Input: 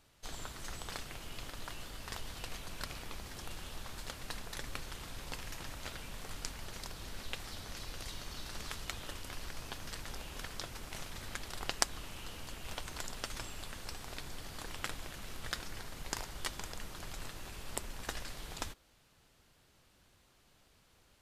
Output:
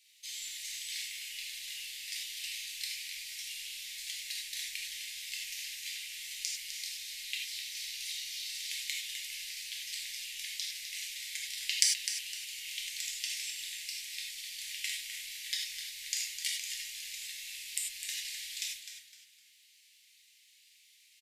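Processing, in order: elliptic high-pass 2.1 kHz, stop band 40 dB; frequency-shifting echo 255 ms, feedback 31%, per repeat -87 Hz, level -9.5 dB; gated-style reverb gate 120 ms flat, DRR -2 dB; trim +4.5 dB

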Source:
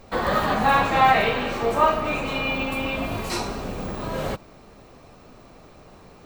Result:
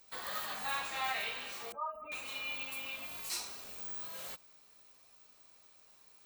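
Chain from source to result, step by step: 1.72–2.12 s: spectral contrast enhancement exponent 2.5; pre-emphasis filter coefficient 0.97; trim -3.5 dB

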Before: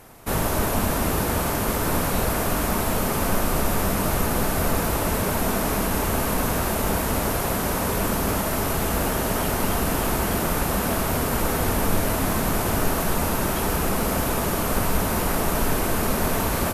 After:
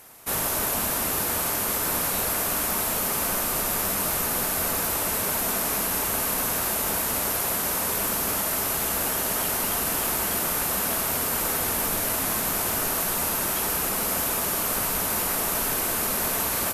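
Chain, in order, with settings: tilt EQ +2.5 dB/octave; trim -4 dB

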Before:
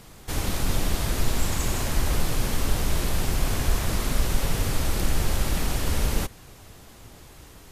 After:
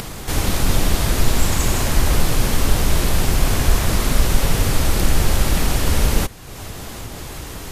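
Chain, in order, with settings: upward compressor, threshold -29 dBFS; trim +7.5 dB

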